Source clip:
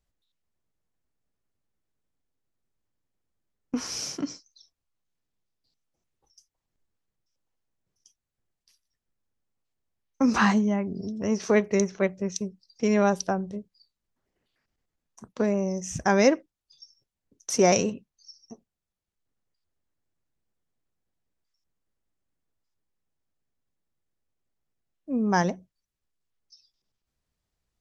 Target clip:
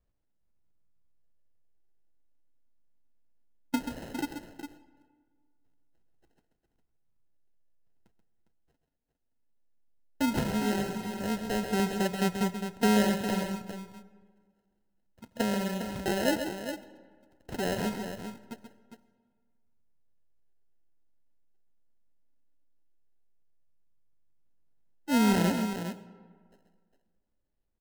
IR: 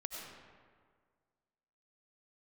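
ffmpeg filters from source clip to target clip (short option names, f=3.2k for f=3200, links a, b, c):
-filter_complex "[0:a]highshelf=f=2.4k:g=-9.5,alimiter=limit=-17.5dB:level=0:latency=1:release=76,aphaser=in_gain=1:out_gain=1:delay=4:decay=0.5:speed=0.16:type=sinusoidal,acrusher=samples=38:mix=1:aa=0.000001,aecho=1:1:133|406:0.376|0.355,asplit=2[a][b];[1:a]atrim=start_sample=2205[c];[b][c]afir=irnorm=-1:irlink=0,volume=-12dB[d];[a][d]amix=inputs=2:normalize=0,volume=-5dB"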